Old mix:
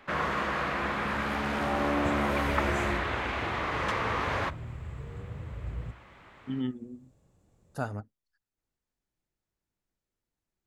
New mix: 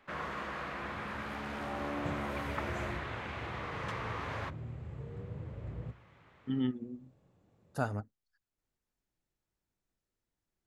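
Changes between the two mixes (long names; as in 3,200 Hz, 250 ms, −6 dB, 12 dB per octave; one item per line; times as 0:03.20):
first sound −9.5 dB
second sound: add band-pass filter 100–3,800 Hz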